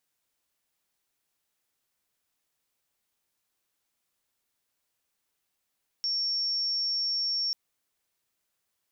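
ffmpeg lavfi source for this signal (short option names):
-f lavfi -i "aevalsrc='0.0501*sin(2*PI*5480*t)':d=1.49:s=44100"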